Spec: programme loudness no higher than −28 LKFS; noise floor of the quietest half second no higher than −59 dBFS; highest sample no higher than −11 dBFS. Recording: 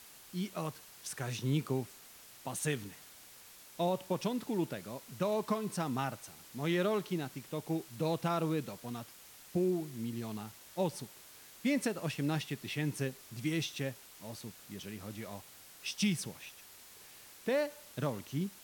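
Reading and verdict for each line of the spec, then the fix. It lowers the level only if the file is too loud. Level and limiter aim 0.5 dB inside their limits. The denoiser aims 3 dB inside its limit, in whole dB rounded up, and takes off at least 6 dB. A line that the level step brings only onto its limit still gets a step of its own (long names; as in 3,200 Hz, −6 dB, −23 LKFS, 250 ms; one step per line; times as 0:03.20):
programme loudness −36.5 LKFS: in spec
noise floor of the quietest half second −55 dBFS: out of spec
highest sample −21.0 dBFS: in spec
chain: broadband denoise 7 dB, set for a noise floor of −55 dBFS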